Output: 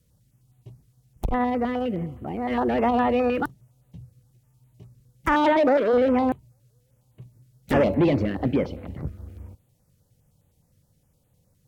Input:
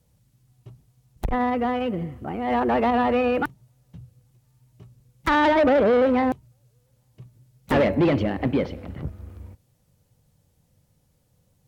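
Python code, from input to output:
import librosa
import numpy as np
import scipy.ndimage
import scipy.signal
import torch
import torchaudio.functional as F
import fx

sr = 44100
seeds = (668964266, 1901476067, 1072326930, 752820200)

y = fx.highpass(x, sr, hz=fx.line((5.34, 110.0), (5.92, 370.0)), slope=12, at=(5.34, 5.92), fade=0.02)
y = fx.filter_held_notch(y, sr, hz=9.7, low_hz=810.0, high_hz=5300.0)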